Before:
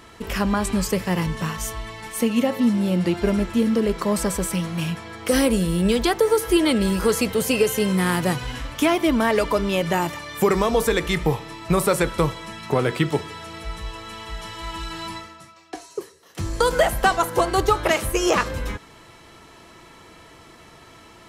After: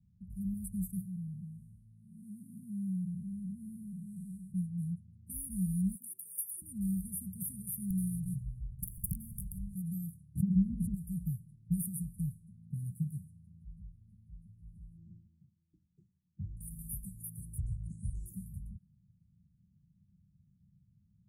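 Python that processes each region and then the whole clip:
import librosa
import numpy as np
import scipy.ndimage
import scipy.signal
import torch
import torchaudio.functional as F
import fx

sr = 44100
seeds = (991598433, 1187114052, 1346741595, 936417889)

y = fx.chain(x, sr, fx.spec_blur(span_ms=302.0),
    fx.highpass(hz=160.0, slope=6), at=(1.01, 4.52))
y = fx.chain(y, sr, fx.highpass(hz=440.0, slope=12),
    fx.high_shelf(hz=5100.0, db=4.5),
    fx.dispersion(late='lows', ms=53.0, hz=1200.0), at=(5.95, 6.62))
y = fx.chain(y, sr, fx.lower_of_two(delay_ms=1.3),
    fx.low_shelf(hz=92.0, db=12.0),
    fx.overflow_wrap(gain_db=11.5), at=(7.9, 9.75))
y = fx.chain(y, sr, fx.lowpass(hz=2600.0, slope=12),
    fx.peak_eq(hz=250.0, db=6.0, octaves=1.3),
    fx.env_flatten(amount_pct=100), at=(10.35, 10.94))
y = fx.chain(y, sr, fx.cvsd(bps=32000),
    fx.peak_eq(hz=340.0, db=10.0, octaves=0.44), at=(14.97, 16.57))
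y = fx.chain(y, sr, fx.steep_lowpass(hz=8300.0, slope=48),
    fx.low_shelf(hz=150.0, db=8.5), at=(17.58, 18.26))
y = fx.highpass(y, sr, hz=130.0, slope=6)
y = fx.env_lowpass(y, sr, base_hz=1400.0, full_db=-19.5)
y = scipy.signal.sosfilt(scipy.signal.cheby1(5, 1.0, [190.0, 9700.0], 'bandstop', fs=sr, output='sos'), y)
y = F.gain(torch.from_numpy(y), -7.0).numpy()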